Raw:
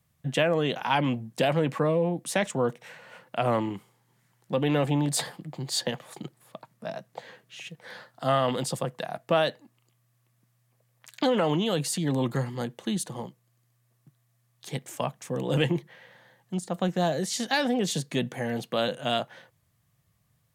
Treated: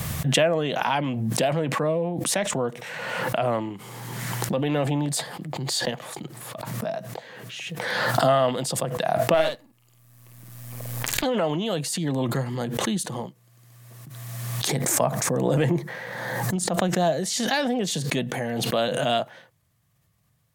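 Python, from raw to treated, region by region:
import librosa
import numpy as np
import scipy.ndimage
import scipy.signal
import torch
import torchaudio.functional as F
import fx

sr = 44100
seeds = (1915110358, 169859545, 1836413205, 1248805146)

y = fx.chain(x, sr, fx.halfwave_gain(db=-7.0),
    fx.high_shelf(hz=9300.0, db=7.5),
    fx.doubler(ms=50.0, db=-4.0), at=(9.34, 11.24))
y = fx.chain(y, sr, fx.peak_eq(hz=3000.0, db=-10.5, octaves=0.58),
    fx.env_flatten(amount_pct=50), at=(14.69, 16.56))
y = fx.rider(y, sr, range_db=5, speed_s=2.0)
y = fx.dynamic_eq(y, sr, hz=650.0, q=6.8, threshold_db=-45.0, ratio=4.0, max_db=6)
y = fx.pre_swell(y, sr, db_per_s=27.0)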